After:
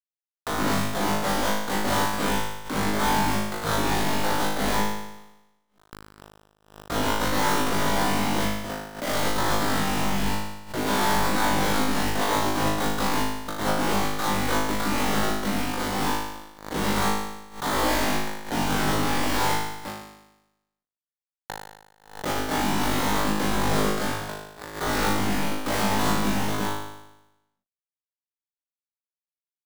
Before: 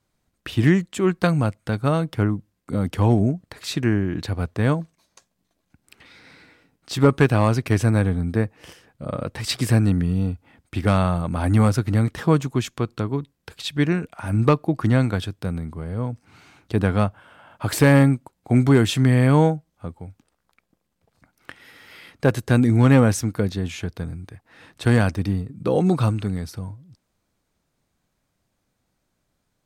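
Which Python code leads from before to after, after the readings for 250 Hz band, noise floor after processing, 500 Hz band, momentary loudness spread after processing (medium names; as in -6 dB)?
-6.5 dB, under -85 dBFS, -4.5 dB, 9 LU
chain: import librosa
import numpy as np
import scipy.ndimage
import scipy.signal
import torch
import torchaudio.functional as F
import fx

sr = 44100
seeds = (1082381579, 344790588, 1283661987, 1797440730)

p1 = fx.chord_vocoder(x, sr, chord='major triad', root=55)
p2 = fx.highpass(p1, sr, hz=1400.0, slope=6)
p3 = fx.high_shelf(p2, sr, hz=4100.0, db=7.5)
p4 = fx.rider(p3, sr, range_db=4, speed_s=0.5)
p5 = fx.fuzz(p4, sr, gain_db=41.0, gate_db=-48.0)
p6 = fx.sample_hold(p5, sr, seeds[0], rate_hz=2600.0, jitter_pct=20)
p7 = 10.0 ** (-33.5 / 20.0) * np.tanh(p6 / 10.0 ** (-33.5 / 20.0))
p8 = p7 + fx.room_flutter(p7, sr, wall_m=3.3, rt60_s=0.95, dry=0)
p9 = fx.pre_swell(p8, sr, db_per_s=130.0)
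y = p9 * 10.0 ** (7.0 / 20.0)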